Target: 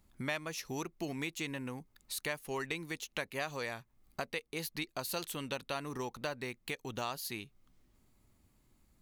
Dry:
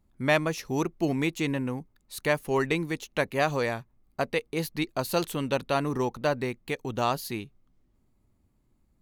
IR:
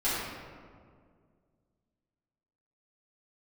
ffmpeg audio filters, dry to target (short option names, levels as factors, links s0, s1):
-af "tiltshelf=f=1200:g=-5,acompressor=threshold=0.00501:ratio=2.5,volume=1.58"